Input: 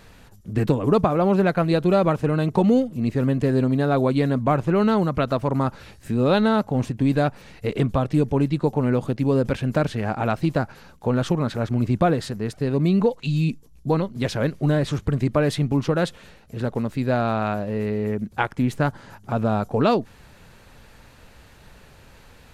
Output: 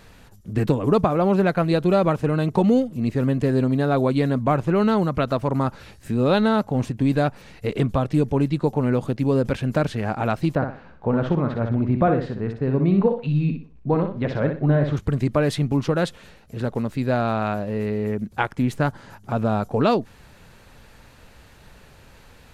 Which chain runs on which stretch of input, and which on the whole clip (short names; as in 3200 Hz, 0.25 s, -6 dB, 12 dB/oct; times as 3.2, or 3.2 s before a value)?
10.55–14.97 LPF 2000 Hz + feedback echo 61 ms, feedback 29%, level -6.5 dB
whole clip: dry